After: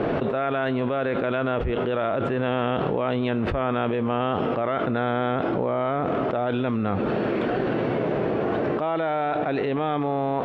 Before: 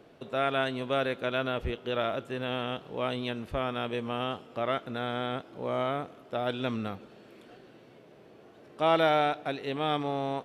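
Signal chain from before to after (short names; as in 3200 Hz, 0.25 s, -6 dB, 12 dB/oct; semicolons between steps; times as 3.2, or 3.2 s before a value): LPF 1900 Hz 12 dB/oct; fast leveller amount 100%; gain -2.5 dB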